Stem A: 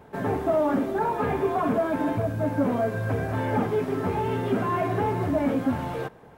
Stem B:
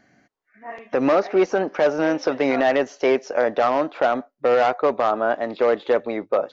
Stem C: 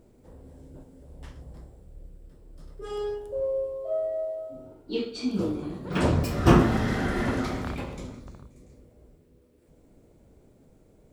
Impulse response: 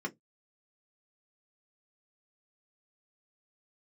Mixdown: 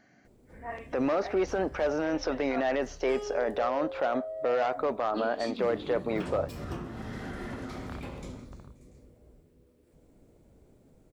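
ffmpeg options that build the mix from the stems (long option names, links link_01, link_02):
-filter_complex "[1:a]alimiter=limit=-16.5dB:level=0:latency=1:release=21,volume=-3.5dB[link_01];[2:a]acompressor=threshold=-32dB:ratio=10,adelay=250,volume=-2.5dB[link_02];[link_01][link_02]amix=inputs=2:normalize=0"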